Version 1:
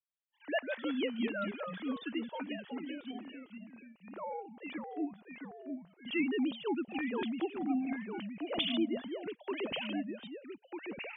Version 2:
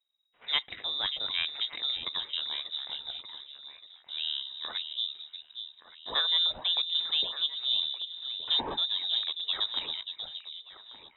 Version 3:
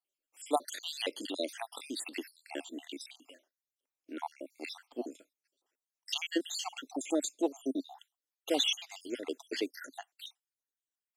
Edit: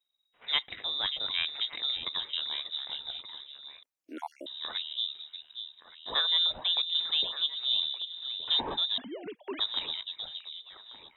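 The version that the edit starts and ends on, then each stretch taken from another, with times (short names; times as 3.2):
2
3.83–4.46 from 3
8.98–9.59 from 1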